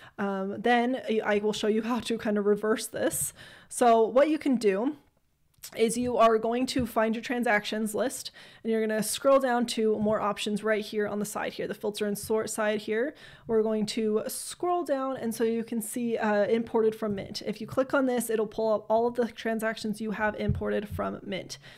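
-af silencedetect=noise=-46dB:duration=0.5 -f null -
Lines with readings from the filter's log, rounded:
silence_start: 4.98
silence_end: 5.63 | silence_duration: 0.65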